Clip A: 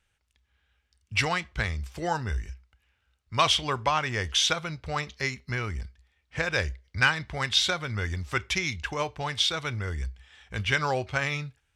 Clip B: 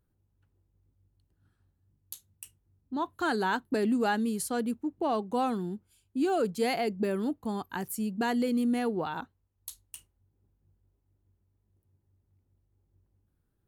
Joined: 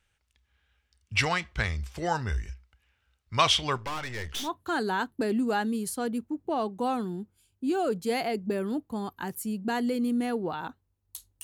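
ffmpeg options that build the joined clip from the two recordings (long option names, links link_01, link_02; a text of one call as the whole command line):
ffmpeg -i cue0.wav -i cue1.wav -filter_complex "[0:a]asettb=1/sr,asplit=3[link_01][link_02][link_03];[link_01]atrim=end=3.774[link_04];[link_02]atrim=start=3.77:end=4.5,asetpts=PTS-STARTPTS,afade=type=in:duration=0.004:curve=qsin,afade=type=out:start_time=0.726:duration=0.004:curve=qsin,aeval=exprs='(tanh(35.5*val(0)+0.75)-tanh(0.75))/35.5':channel_layout=same[link_05];[link_03]atrim=start=4.496[link_06];[link_04][link_05]acrossfade=duration=0.004:curve1=hsin:curve2=qsin[link_07];[link_07][link_06]acrossfade=duration=0.004:curve1=qsin:curve2=hsin,apad=whole_dur=11.43,atrim=end=11.43,atrim=end=4.5,asetpts=PTS-STARTPTS[link_08];[1:a]atrim=start=2.91:end=9.96,asetpts=PTS-STARTPTS[link_09];[link_08][link_09]acrossfade=duration=0.12:curve1=tri:curve2=tri" out.wav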